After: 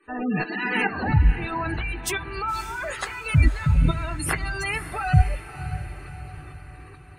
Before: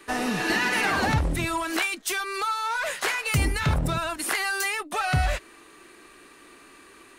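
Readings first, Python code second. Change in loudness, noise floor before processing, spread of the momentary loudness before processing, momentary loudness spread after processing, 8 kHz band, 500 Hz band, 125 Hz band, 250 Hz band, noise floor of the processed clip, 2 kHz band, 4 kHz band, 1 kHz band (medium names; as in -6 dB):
+0.5 dB, -51 dBFS, 5 LU, 18 LU, -4.5 dB, -2.0 dB, +6.5 dB, +2.0 dB, -44 dBFS, -2.5 dB, -6.5 dB, -2.0 dB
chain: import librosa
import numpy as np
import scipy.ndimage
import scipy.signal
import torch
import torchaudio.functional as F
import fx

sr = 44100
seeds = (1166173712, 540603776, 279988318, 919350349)

y = fx.tremolo_shape(x, sr, shape='saw_up', hz=2.3, depth_pct=85)
y = fx.doubler(y, sr, ms=20.0, db=-11.5)
y = fx.spec_gate(y, sr, threshold_db=-15, keep='strong')
y = fx.low_shelf(y, sr, hz=180.0, db=8.0)
y = fx.echo_diffused(y, sr, ms=564, feedback_pct=50, wet_db=-12.0)
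y = F.gain(torch.from_numpy(y), 2.5).numpy()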